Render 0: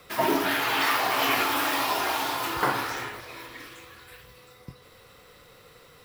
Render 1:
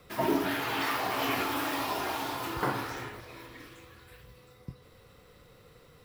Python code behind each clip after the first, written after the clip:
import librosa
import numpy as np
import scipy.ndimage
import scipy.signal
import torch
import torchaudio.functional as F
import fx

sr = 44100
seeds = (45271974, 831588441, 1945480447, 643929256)

y = fx.low_shelf(x, sr, hz=430.0, db=10.0)
y = F.gain(torch.from_numpy(y), -8.0).numpy()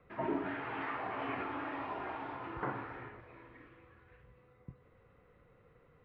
y = scipy.signal.sosfilt(scipy.signal.butter(4, 2300.0, 'lowpass', fs=sr, output='sos'), x)
y = F.gain(torch.from_numpy(y), -7.5).numpy()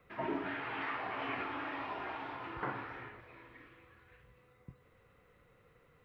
y = fx.high_shelf(x, sr, hz=2200.0, db=11.5)
y = F.gain(torch.from_numpy(y), -2.5).numpy()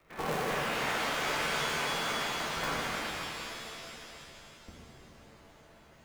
y = fx.cycle_switch(x, sr, every=2, mode='inverted')
y = fx.rev_shimmer(y, sr, seeds[0], rt60_s=2.5, semitones=7, shimmer_db=-2, drr_db=-3.0)